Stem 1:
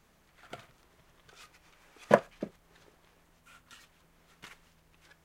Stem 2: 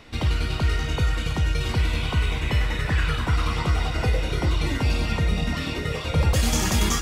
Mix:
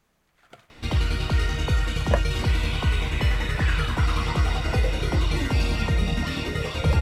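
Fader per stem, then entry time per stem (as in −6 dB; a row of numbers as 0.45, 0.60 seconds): −3.0, 0.0 decibels; 0.00, 0.70 seconds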